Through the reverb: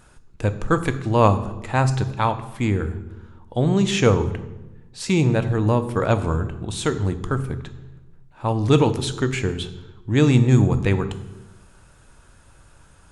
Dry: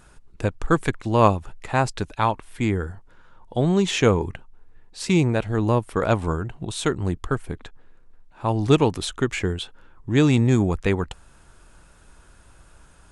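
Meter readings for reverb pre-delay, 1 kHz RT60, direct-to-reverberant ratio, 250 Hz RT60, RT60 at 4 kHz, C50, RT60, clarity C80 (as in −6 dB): 3 ms, 0.95 s, 10.0 dB, 1.4 s, 0.75 s, 13.5 dB, 1.1 s, 15.0 dB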